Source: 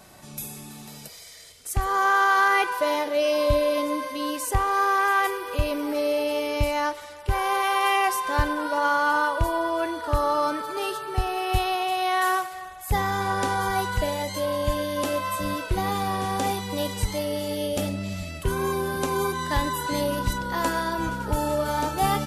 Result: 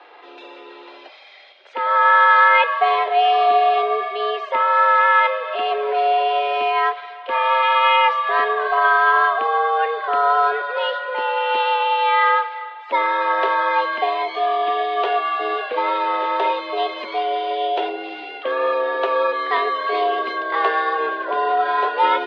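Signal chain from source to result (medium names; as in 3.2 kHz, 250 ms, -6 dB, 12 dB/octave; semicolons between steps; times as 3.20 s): mistuned SSB +130 Hz 260–3400 Hz; trim +7 dB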